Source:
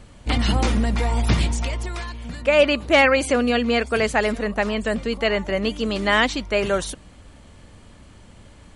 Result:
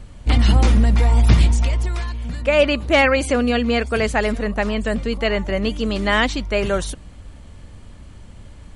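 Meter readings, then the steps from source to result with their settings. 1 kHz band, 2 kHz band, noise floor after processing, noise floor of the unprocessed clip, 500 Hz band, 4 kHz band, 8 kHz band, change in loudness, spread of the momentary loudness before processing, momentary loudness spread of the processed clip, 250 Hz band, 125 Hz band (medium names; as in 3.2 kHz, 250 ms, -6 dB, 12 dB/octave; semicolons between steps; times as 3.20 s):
0.0 dB, 0.0 dB, -41 dBFS, -47 dBFS, +0.5 dB, 0.0 dB, 0.0 dB, +2.0 dB, 10 LU, 8 LU, +2.0 dB, +7.0 dB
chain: bass shelf 120 Hz +10 dB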